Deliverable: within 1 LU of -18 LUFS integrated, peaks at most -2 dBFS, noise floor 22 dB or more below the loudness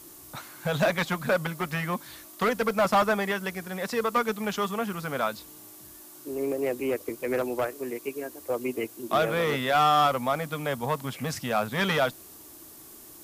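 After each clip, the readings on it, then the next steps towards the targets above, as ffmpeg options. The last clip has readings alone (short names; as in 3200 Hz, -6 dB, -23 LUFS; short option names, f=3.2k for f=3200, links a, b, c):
noise floor -48 dBFS; noise floor target -50 dBFS; loudness -27.5 LUFS; peak -14.5 dBFS; loudness target -18.0 LUFS
-> -af "afftdn=nr=6:nf=-48"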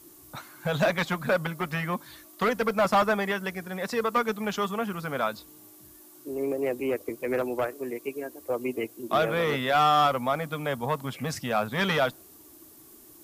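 noise floor -52 dBFS; loudness -27.5 LUFS; peak -14.5 dBFS; loudness target -18.0 LUFS
-> -af "volume=9.5dB"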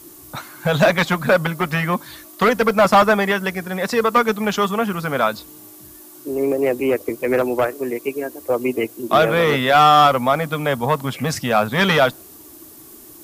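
loudness -18.0 LUFS; peak -5.0 dBFS; noise floor -42 dBFS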